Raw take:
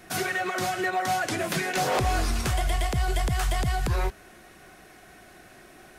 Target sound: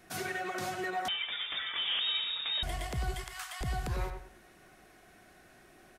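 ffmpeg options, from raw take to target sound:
-filter_complex "[0:a]asettb=1/sr,asplit=3[a][b][c];[a]atrim=end=3.144[d];[b]atrim=start=3.14:end=3.61,asetpts=PTS-STARTPTS,afade=t=in:d=0.004:c=qsin,afade=t=out:st=0.466:d=0.004:c=qsin,highpass=f=960:w=0.5412,highpass=f=960:w=1.3066[e];[c]atrim=start=3.606[f];[d][e]acrossfade=d=0.004:c1=hsin:c2=qsin[g];[g][f]acrossfade=d=0.004:c1=qsin:c2=hsin,asplit=2[h][i];[i]adelay=96,lowpass=f=2.3k:p=1,volume=-6dB,asplit=2[j][k];[k]adelay=96,lowpass=f=2.3k:p=1,volume=0.3,asplit=2[l][m];[m]adelay=96,lowpass=f=2.3k:p=1,volume=0.3,asplit=2[n][o];[o]adelay=96,lowpass=f=2.3k:p=1,volume=0.3[p];[h][j][l][n][p]amix=inputs=5:normalize=0,asettb=1/sr,asplit=3[q][r][s];[q]atrim=end=1.084[t];[r]atrim=start=1.08:end=2.63,asetpts=PTS-STARTPTS,afade=t=in:d=0.004:c=qsin,afade=t=out:st=1.546:d=0.004:c=qsin,lowpass=f=3.2k:t=q:w=0.5098,lowpass=f=3.2k:t=q:w=0.6013,lowpass=f=3.2k:t=q:w=0.9,lowpass=f=3.2k:t=q:w=2.563,afreqshift=-3800[u];[s]atrim=start=2.626[v];[t][u]acrossfade=d=0.004:c1=hsin:c2=qsin[w];[w][v]acrossfade=d=0.004:c1=qsin:c2=hsin,volume=-9dB"

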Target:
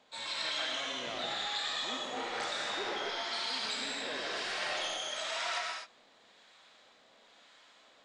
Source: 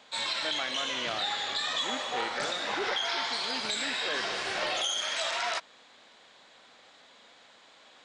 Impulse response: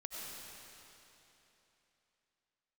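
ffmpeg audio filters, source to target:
-filter_complex "[0:a]acrossover=split=850[a][b];[a]aeval=exprs='val(0)*(1-0.5/2+0.5/2*cos(2*PI*1*n/s))':c=same[c];[b]aeval=exprs='val(0)*(1-0.5/2-0.5/2*cos(2*PI*1*n/s))':c=same[d];[c][d]amix=inputs=2:normalize=0[e];[1:a]atrim=start_sample=2205,afade=t=out:st=0.32:d=0.01,atrim=end_sample=14553[f];[e][f]afir=irnorm=-1:irlink=0"

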